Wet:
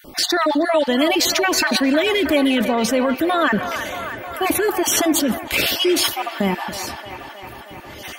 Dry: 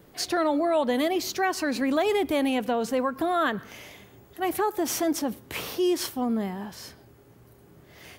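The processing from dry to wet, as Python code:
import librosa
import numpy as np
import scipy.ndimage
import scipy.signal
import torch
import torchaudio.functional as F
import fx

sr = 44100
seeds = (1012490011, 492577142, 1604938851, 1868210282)

p1 = fx.spec_dropout(x, sr, seeds[0], share_pct=28)
p2 = p1 + 0.41 * np.pad(p1, (int(3.4 * sr / 1000.0), 0))[:len(p1)]
p3 = fx.dynamic_eq(p2, sr, hz=2900.0, q=1.2, threshold_db=-45.0, ratio=4.0, max_db=6)
p4 = fx.over_compress(p3, sr, threshold_db=-31.0, ratio=-0.5)
p5 = p3 + F.gain(torch.from_numpy(p4), 0.5).numpy()
p6 = fx.echo_wet_bandpass(p5, sr, ms=314, feedback_pct=74, hz=1200.0, wet_db=-8.0)
y = F.gain(torch.from_numpy(p6), 4.5).numpy()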